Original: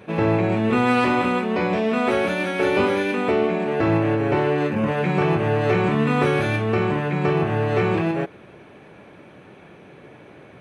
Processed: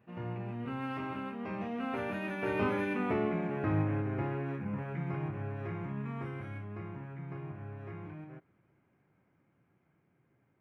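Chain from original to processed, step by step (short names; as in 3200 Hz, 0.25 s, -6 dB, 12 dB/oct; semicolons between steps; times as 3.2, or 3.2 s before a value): Doppler pass-by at 2.97, 25 m/s, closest 19 m; graphic EQ 125/500/4000/8000 Hz +5/-7/-11/-12 dB; gain -7.5 dB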